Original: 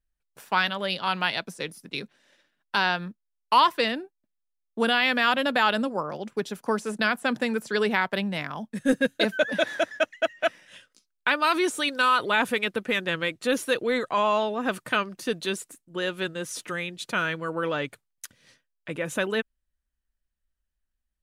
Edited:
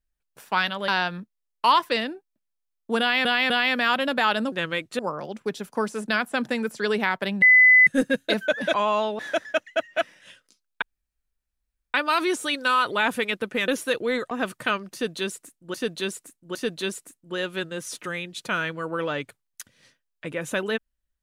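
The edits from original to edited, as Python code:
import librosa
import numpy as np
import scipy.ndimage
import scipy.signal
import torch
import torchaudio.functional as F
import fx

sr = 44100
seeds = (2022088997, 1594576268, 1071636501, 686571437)

y = fx.edit(x, sr, fx.cut(start_s=0.88, length_s=1.88),
    fx.repeat(start_s=4.88, length_s=0.25, count=3),
    fx.bleep(start_s=8.33, length_s=0.45, hz=2010.0, db=-10.5),
    fx.insert_room_tone(at_s=11.28, length_s=1.12),
    fx.move(start_s=13.02, length_s=0.47, to_s=5.9),
    fx.move(start_s=14.12, length_s=0.45, to_s=9.65),
    fx.repeat(start_s=15.19, length_s=0.81, count=3), tone=tone)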